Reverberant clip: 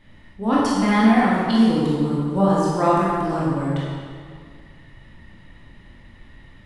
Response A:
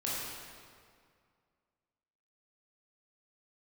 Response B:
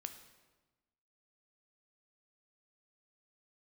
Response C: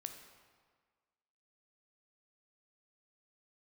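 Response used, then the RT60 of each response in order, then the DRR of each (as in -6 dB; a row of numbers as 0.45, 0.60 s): A; 2.1, 1.2, 1.6 s; -7.5, 7.0, 5.5 dB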